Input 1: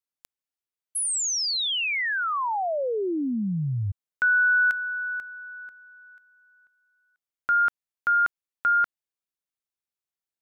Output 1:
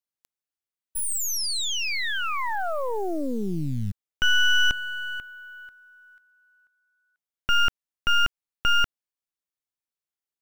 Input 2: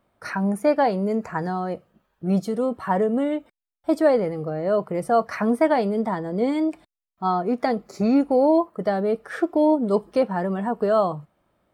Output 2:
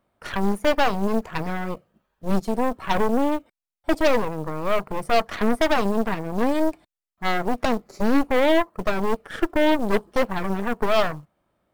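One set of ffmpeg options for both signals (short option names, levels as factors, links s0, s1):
-af "aeval=exprs='0.447*(cos(1*acos(clip(val(0)/0.447,-1,1)))-cos(1*PI/2))+0.00355*(cos(4*acos(clip(val(0)/0.447,-1,1)))-cos(4*PI/2))+0.112*(cos(8*acos(clip(val(0)/0.447,-1,1)))-cos(8*PI/2))':c=same,acrusher=bits=7:mode=log:mix=0:aa=0.000001,volume=0.708"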